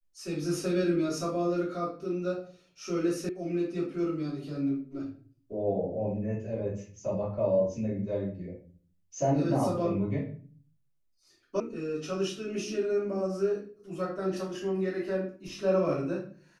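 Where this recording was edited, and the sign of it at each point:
3.29 sound cut off
11.6 sound cut off

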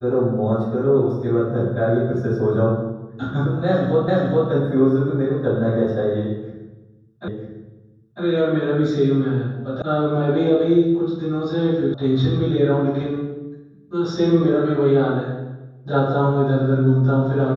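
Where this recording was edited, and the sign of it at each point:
4.08 repeat of the last 0.42 s
7.28 repeat of the last 0.95 s
9.82 sound cut off
11.94 sound cut off

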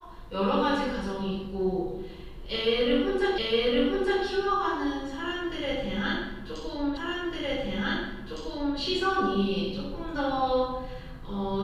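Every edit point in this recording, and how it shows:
3.38 repeat of the last 0.86 s
6.97 repeat of the last 1.81 s

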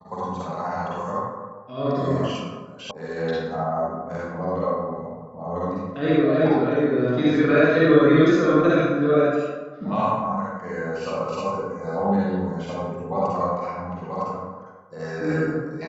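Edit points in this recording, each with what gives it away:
2.91 sound cut off

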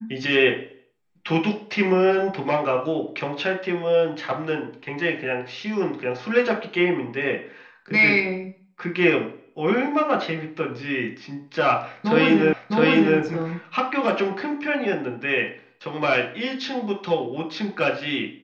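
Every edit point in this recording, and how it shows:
12.53 repeat of the last 0.66 s

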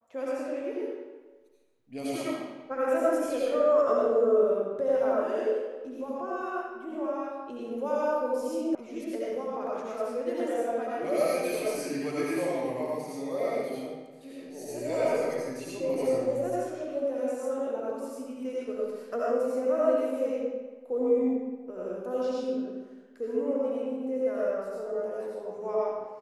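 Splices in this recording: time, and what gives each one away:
8.75 sound cut off

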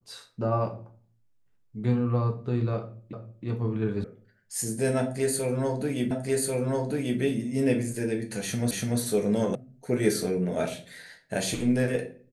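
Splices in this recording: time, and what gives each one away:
3.13 repeat of the last 0.32 s
4.04 sound cut off
6.11 repeat of the last 1.09 s
8.71 repeat of the last 0.29 s
9.55 sound cut off

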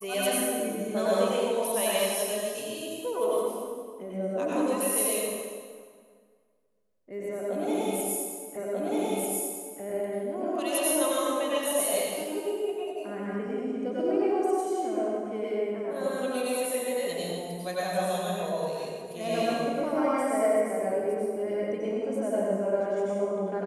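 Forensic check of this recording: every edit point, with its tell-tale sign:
8.57 repeat of the last 1.24 s

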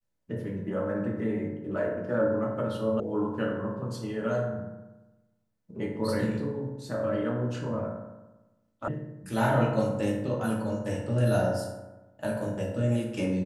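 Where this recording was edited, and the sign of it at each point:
3 sound cut off
8.88 sound cut off

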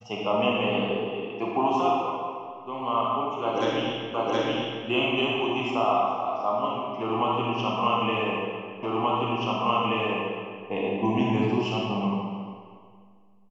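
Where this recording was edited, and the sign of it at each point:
4.14 repeat of the last 0.72 s
8.83 repeat of the last 1.83 s

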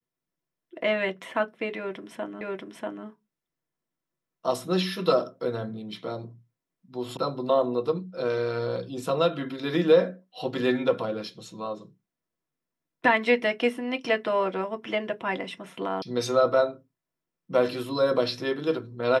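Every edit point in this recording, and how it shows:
2.41 repeat of the last 0.64 s
7.17 sound cut off
16.02 sound cut off

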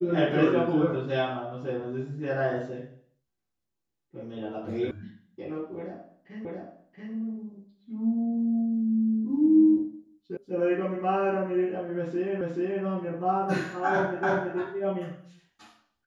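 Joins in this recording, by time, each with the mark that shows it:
4.91 sound cut off
6.45 repeat of the last 0.68 s
10.37 sound cut off
12.41 repeat of the last 0.43 s
14.23 repeat of the last 0.33 s

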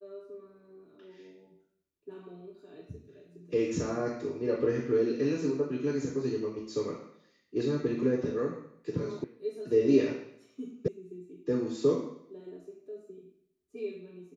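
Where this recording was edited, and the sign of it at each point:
9.24 sound cut off
10.88 sound cut off

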